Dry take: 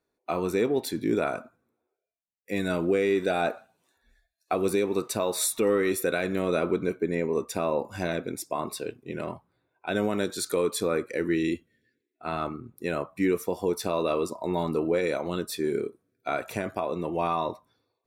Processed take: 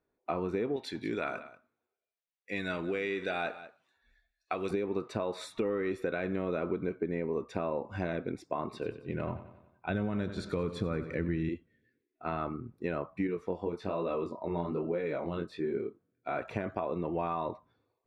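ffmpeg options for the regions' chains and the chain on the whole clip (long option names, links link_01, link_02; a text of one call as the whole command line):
ffmpeg -i in.wav -filter_complex "[0:a]asettb=1/sr,asplit=3[link_01][link_02][link_03];[link_01]atrim=end=0.764[link_04];[link_02]atrim=start=0.76:end=4.71,asetpts=PTS-STARTPTS,afade=type=in:duration=0.004:curve=qsin,afade=type=out:start_time=3.946:duration=0.004:curve=qsin,tiltshelf=frequency=1400:gain=-8.5,aecho=1:1:187:0.133,atrim=end_sample=174195[link_05];[link_03]atrim=start=4.706[link_06];[link_04][link_05]acrossfade=duration=0.004:curve1=hsin:curve2=qsin[link_07];[link_07][link_06]acrossfade=duration=0.004:curve1=qsin:curve2=hsin,asettb=1/sr,asplit=3[link_08][link_09][link_10];[link_08]atrim=end=8.644[link_11];[link_09]atrim=start=8.64:end=11.49,asetpts=PTS-STARTPTS,afade=type=in:duration=0.004:curve=qsin,afade=type=out:start_time=2.846:duration=0.004:curve=qsin,asubboost=boost=8:cutoff=170,aecho=1:1:92|184|276|368|460:0.2|0.108|0.0582|0.0314|0.017,atrim=end_sample=125685[link_12];[link_10]atrim=start=11.486[link_13];[link_11][link_12]acrossfade=duration=0.004:curve1=hsin:curve2=qsin[link_14];[link_14][link_13]acrossfade=duration=0.004:curve1=qsin:curve2=hsin,asettb=1/sr,asplit=3[link_15][link_16][link_17];[link_15]atrim=end=13.274[link_18];[link_16]atrim=start=13.27:end=16.37,asetpts=PTS-STARTPTS,afade=type=in:duration=0.004:curve=qsin,afade=type=out:start_time=3.096:duration=0.004:curve=qsin,equalizer=frequency=13000:width_type=o:width=1.4:gain=-4.5,bandreject=frequency=5700:width=15,flanger=delay=17:depth=7.2:speed=1.2[link_19];[link_17]atrim=start=16.366[link_20];[link_18][link_19]acrossfade=duration=0.004:curve1=hsin:curve2=qsin[link_21];[link_21][link_20]acrossfade=duration=0.004:curve1=qsin:curve2=hsin,lowpass=2500,lowshelf=frequency=140:gain=4.5,acompressor=threshold=-27dB:ratio=6,volume=-1.5dB" out.wav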